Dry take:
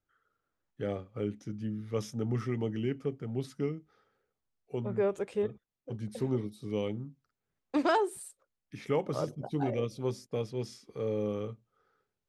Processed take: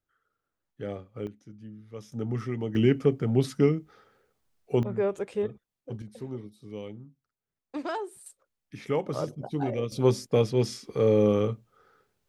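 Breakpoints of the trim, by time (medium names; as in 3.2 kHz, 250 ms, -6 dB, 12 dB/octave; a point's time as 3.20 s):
-1 dB
from 1.27 s -8.5 dB
from 2.12 s +1 dB
from 2.75 s +11 dB
from 4.83 s +2 dB
from 6.02 s -6 dB
from 8.26 s +2 dB
from 9.92 s +11 dB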